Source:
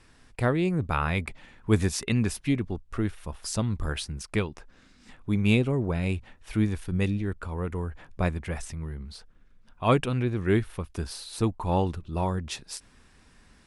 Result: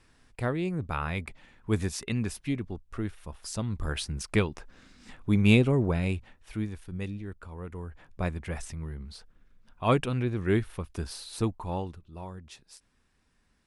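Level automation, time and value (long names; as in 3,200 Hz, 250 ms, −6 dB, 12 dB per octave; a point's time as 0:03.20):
0:03.59 −5 dB
0:04.19 +2 dB
0:05.83 +2 dB
0:06.72 −9 dB
0:07.60 −9 dB
0:08.55 −2 dB
0:11.41 −2 dB
0:12.09 −13.5 dB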